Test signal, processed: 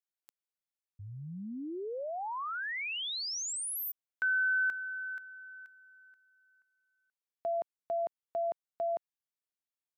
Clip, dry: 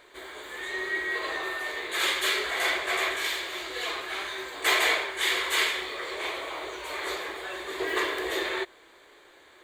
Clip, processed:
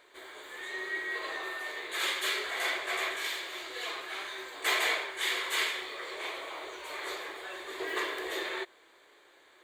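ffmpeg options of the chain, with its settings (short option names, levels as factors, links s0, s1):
-af "lowshelf=f=150:g=-11.5,volume=0.562"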